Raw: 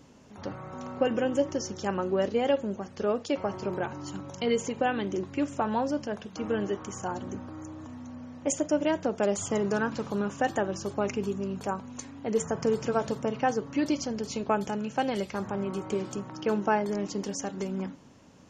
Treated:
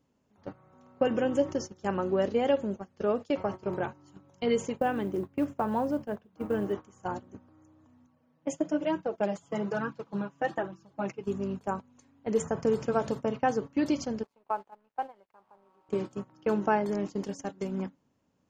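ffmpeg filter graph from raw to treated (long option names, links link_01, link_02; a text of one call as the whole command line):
ffmpeg -i in.wav -filter_complex "[0:a]asettb=1/sr,asplit=3[link_01][link_02][link_03];[link_01]atrim=end=4.784[link_04];[link_02]atrim=start=4.78:end=6.73,asetpts=PTS-STARTPTS,afade=type=in:duration=0.004:curve=qsin,afade=type=out:start_time=1.946:duration=0.004:curve=qsin,lowpass=frequency=1700:poles=1,acrusher=bits=8:mode=log:mix=0:aa=0.000001[link_05];[link_03]atrim=start=6.726[link_06];[link_04][link_05]acrossfade=duration=0.004:curve1=hsin:curve2=qsin[link_07];[link_07][link_06]acrossfade=duration=0.004:curve1=qsin:curve2=hsin,asettb=1/sr,asplit=3[link_08][link_09][link_10];[link_08]atrim=end=8.064[link_11];[link_09]atrim=start=8.06:end=11.25,asetpts=PTS-STARTPTS,afade=type=in:duration=0.004:curve=qsin,afade=type=out:start_time=3.186:duration=0.004:curve=qsin,highpass=100,lowpass=5700,aecho=1:1:6.1:0.46,atrim=end_sample=140679,flanger=delay=0.7:depth=6.5:regen=-19:speed=1.1:shape=sinusoidal[link_12];[link_10]atrim=start=11.246[link_13];[link_11][link_12]acrossfade=duration=0.004:curve1=hsin:curve2=qsin[link_14];[link_14][link_13]acrossfade=duration=0.004:curve1=qsin:curve2=hsin,asettb=1/sr,asplit=3[link_15][link_16][link_17];[link_15]atrim=end=14.234[link_18];[link_16]atrim=start=14.23:end=15.89,asetpts=PTS-STARTPTS,afade=type=in:duration=0.004:curve=qsin,afade=type=out:start_time=1.656:duration=0.004:curve=qsin,bandpass=frequency=920:width_type=q:width=2.2,aeval=exprs='sgn(val(0))*max(abs(val(0))-0.0015,0)':channel_layout=same[link_19];[link_17]atrim=start=15.886[link_20];[link_18][link_19]acrossfade=duration=0.004:curve1=hsin:curve2=qsin[link_21];[link_21][link_20]acrossfade=duration=0.004:curve1=qsin:curve2=hsin,bandreject=frequency=5700:width=29,agate=range=-18dB:threshold=-33dB:ratio=16:detection=peak,equalizer=frequency=5900:width=0.34:gain=-3.5" out.wav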